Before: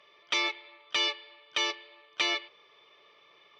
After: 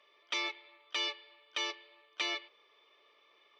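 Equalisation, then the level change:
Butterworth high-pass 220 Hz 36 dB per octave
−6.5 dB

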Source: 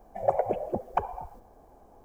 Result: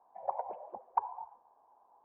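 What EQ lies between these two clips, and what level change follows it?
resonant band-pass 960 Hz, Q 8.2
+3.0 dB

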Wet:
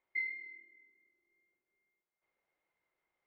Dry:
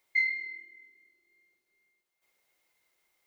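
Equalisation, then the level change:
low-pass filter 1,800 Hz 12 dB per octave
−5.0 dB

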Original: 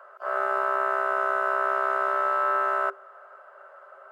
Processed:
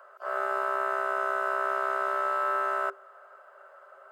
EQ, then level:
low-shelf EQ 480 Hz +5.5 dB
high-shelf EQ 3,000 Hz +10.5 dB
−6.0 dB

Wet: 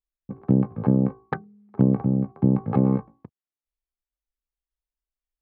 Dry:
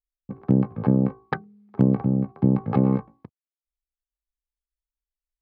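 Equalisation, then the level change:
low-pass filter 1,600 Hz 6 dB per octave
0.0 dB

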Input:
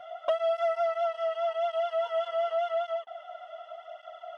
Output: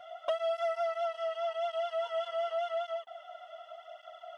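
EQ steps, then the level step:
high-shelf EQ 3,100 Hz +8.5 dB
−5.0 dB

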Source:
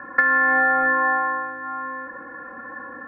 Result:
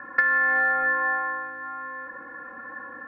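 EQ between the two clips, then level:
dynamic equaliser 900 Hz, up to −4 dB, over −33 dBFS, Q 1.1
high-shelf EQ 2,100 Hz +9.5 dB
dynamic equaliser 260 Hz, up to −8 dB, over −49 dBFS, Q 7.2
−5.5 dB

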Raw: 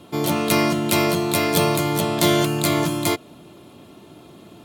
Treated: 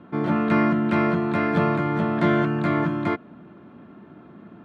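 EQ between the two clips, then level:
low-pass with resonance 1,600 Hz, resonance Q 3
parametric band 210 Hz +10.5 dB 0.85 octaves
−6.0 dB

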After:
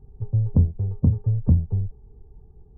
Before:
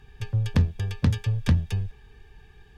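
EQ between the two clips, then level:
Gaussian smoothing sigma 13 samples
+3.5 dB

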